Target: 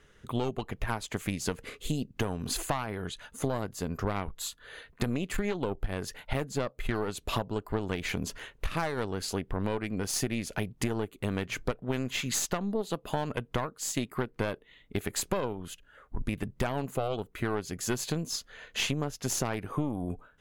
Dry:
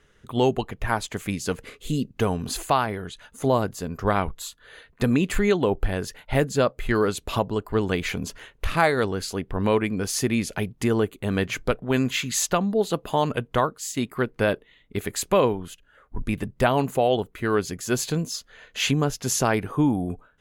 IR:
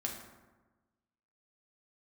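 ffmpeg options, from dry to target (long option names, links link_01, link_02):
-af "aeval=exprs='0.501*(cos(1*acos(clip(val(0)/0.501,-1,1)))-cos(1*PI/2))+0.0891*(cos(4*acos(clip(val(0)/0.501,-1,1)))-cos(4*PI/2))':channel_layout=same,acompressor=threshold=-27dB:ratio=6"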